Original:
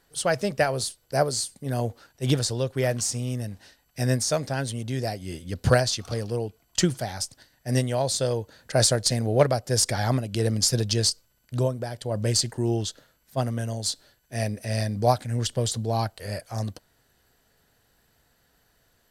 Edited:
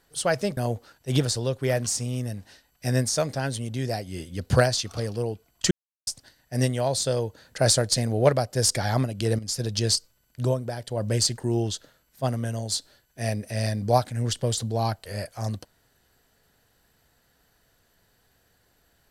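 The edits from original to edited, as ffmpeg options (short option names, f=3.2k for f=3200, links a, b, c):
-filter_complex "[0:a]asplit=5[a][b][c][d][e];[a]atrim=end=0.572[f];[b]atrim=start=1.708:end=6.85,asetpts=PTS-STARTPTS,afade=t=out:st=5.138:d=0.004:c=hsin[g];[c]atrim=start=6.85:end=7.21,asetpts=PTS-STARTPTS,volume=0[h];[d]atrim=start=7.21:end=10.53,asetpts=PTS-STARTPTS,afade=t=in:d=0.004:c=hsin,afade=t=out:st=3.316:d=0.004:c=hsin:silence=0.223872[i];[e]atrim=start=10.53,asetpts=PTS-STARTPTS,afade=t=in:d=0.5:silence=0.223872[j];[g][h][i][j]concat=n=4:v=0:a=1[k];[f][k]acrossfade=d=0.004:c1=hsin:c2=hsin"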